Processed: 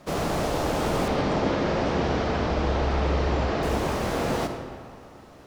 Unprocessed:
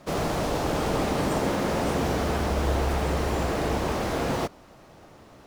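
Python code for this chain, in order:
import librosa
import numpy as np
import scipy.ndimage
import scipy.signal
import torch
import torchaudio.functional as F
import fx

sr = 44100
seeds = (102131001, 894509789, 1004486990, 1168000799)

y = fx.lowpass(x, sr, hz=5400.0, slope=24, at=(1.08, 3.63))
y = fx.rev_freeverb(y, sr, rt60_s=2.0, hf_ratio=0.7, predelay_ms=10, drr_db=6.0)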